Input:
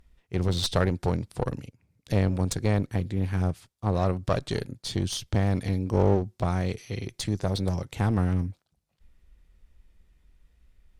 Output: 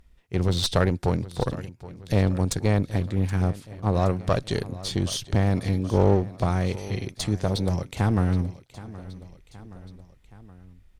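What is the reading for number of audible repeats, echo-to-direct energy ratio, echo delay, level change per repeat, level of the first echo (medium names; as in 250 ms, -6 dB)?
3, -16.0 dB, 772 ms, -4.5 dB, -17.5 dB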